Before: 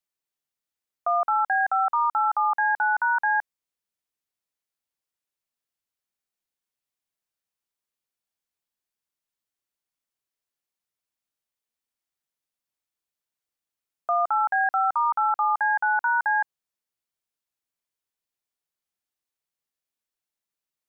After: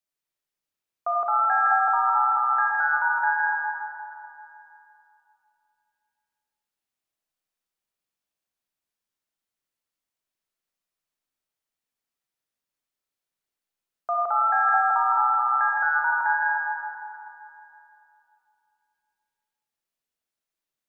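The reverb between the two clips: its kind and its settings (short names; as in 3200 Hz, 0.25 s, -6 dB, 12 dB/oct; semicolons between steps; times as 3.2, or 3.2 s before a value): digital reverb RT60 2.9 s, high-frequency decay 0.6×, pre-delay 10 ms, DRR -2.5 dB; gain -2.5 dB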